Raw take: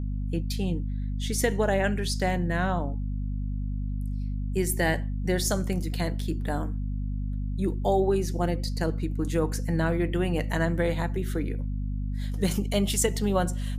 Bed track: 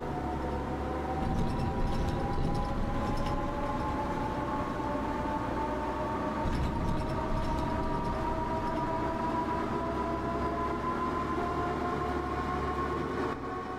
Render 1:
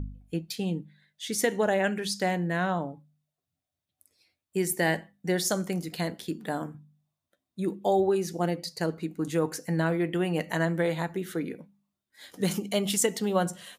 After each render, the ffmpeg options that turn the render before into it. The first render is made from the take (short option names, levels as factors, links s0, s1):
-af "bandreject=f=50:t=h:w=4,bandreject=f=100:t=h:w=4,bandreject=f=150:t=h:w=4,bandreject=f=200:t=h:w=4,bandreject=f=250:t=h:w=4"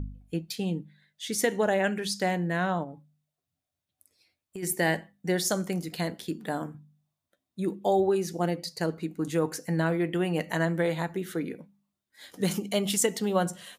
-filter_complex "[0:a]asplit=3[s0][s1][s2];[s0]afade=t=out:st=2.83:d=0.02[s3];[s1]acompressor=threshold=0.0178:ratio=6:attack=3.2:release=140:knee=1:detection=peak,afade=t=in:st=2.83:d=0.02,afade=t=out:st=4.62:d=0.02[s4];[s2]afade=t=in:st=4.62:d=0.02[s5];[s3][s4][s5]amix=inputs=3:normalize=0"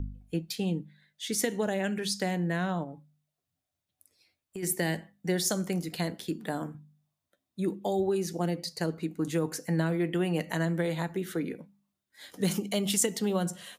-filter_complex "[0:a]acrossover=split=340|3000[s0][s1][s2];[s1]acompressor=threshold=0.0282:ratio=6[s3];[s0][s3][s2]amix=inputs=3:normalize=0"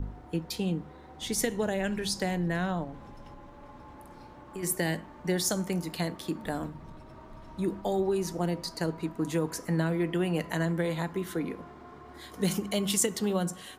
-filter_complex "[1:a]volume=0.15[s0];[0:a][s0]amix=inputs=2:normalize=0"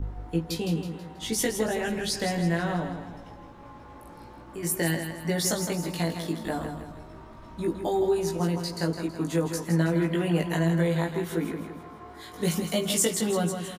-filter_complex "[0:a]asplit=2[s0][s1];[s1]adelay=18,volume=0.794[s2];[s0][s2]amix=inputs=2:normalize=0,aecho=1:1:162|324|486|648|810:0.398|0.171|0.0736|0.0317|0.0136"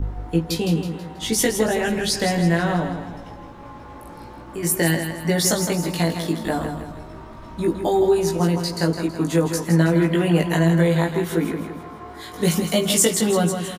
-af "volume=2.24"